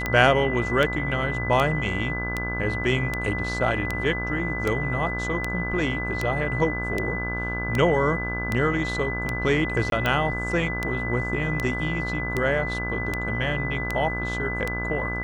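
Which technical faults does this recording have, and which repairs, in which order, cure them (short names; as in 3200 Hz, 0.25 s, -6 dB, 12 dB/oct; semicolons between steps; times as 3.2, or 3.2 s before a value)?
buzz 60 Hz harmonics 28 -31 dBFS
tick 78 rpm -11 dBFS
tone 2000 Hz -29 dBFS
9.9–9.92 gap 22 ms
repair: de-click; de-hum 60 Hz, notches 28; notch 2000 Hz, Q 30; interpolate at 9.9, 22 ms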